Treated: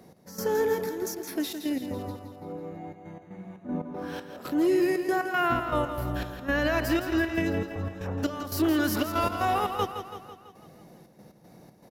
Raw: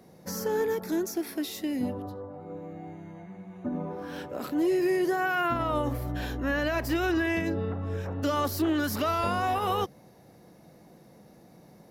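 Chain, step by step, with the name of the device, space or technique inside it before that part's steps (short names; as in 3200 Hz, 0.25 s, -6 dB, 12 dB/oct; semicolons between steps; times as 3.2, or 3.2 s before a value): trance gate with a delay (step gate "x..xxxx.x.xx.x.x" 118 bpm -12 dB; feedback echo 0.166 s, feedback 56%, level -9 dB); gain +2 dB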